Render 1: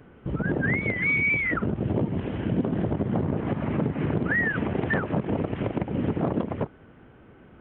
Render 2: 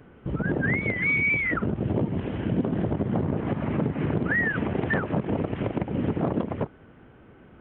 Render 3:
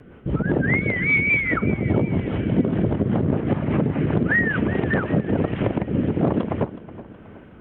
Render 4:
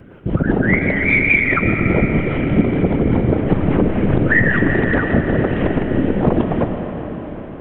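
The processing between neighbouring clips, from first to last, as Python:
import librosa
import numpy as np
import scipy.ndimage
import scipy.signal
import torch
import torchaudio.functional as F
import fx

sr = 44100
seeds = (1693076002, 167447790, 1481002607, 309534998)

y1 = x
y2 = fx.rotary_switch(y1, sr, hz=5.0, then_hz=1.1, switch_at_s=4.54)
y2 = fx.echo_feedback(y2, sr, ms=370, feedback_pct=47, wet_db=-16.5)
y2 = y2 * librosa.db_to_amplitude(6.5)
y3 = fx.whisperise(y2, sr, seeds[0])
y3 = fx.rev_freeverb(y3, sr, rt60_s=4.6, hf_ratio=0.9, predelay_ms=75, drr_db=4.5)
y3 = y3 * librosa.db_to_amplitude(4.0)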